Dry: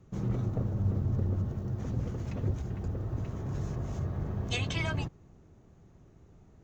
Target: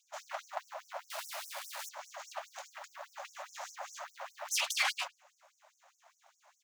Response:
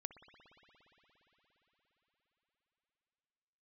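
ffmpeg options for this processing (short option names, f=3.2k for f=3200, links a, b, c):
-filter_complex "[0:a]highpass=100,aeval=exprs='abs(val(0))':c=same,asettb=1/sr,asplit=3[a][b][c];[a]atrim=end=1.104[d];[b]atrim=start=1.1:end=1.89,asetpts=PTS-STARTPTS,afade=t=in:d=0.004:c=qsin,afade=t=out:st=0.786:d=0.004:c=qsin,acrusher=bits=5:dc=4:mix=0:aa=0.000001[e];[c]atrim=start=1.886[f];[d][e]acrossfade=d=0.004:c1=hsin:c2=qsin[g];[g][f]acrossfade=d=0.004:c1=qsin:c2=hsin,asplit=2[h][i];[i]adelay=101,lowpass=f=1.5k:p=1,volume=-19dB,asplit=2[j][k];[k]adelay=101,lowpass=f=1.5k:p=1,volume=0.38,asplit=2[l][m];[m]adelay=101,lowpass=f=1.5k:p=1,volume=0.38[n];[j][l][n]amix=inputs=3:normalize=0[o];[h][o]amix=inputs=2:normalize=0,afftfilt=real='re*gte(b*sr/1024,520*pow(5500/520,0.5+0.5*sin(2*PI*4.9*pts/sr)))':imag='im*gte(b*sr/1024,520*pow(5500/520,0.5+0.5*sin(2*PI*4.9*pts/sr)))':win_size=1024:overlap=0.75,volume=9dB"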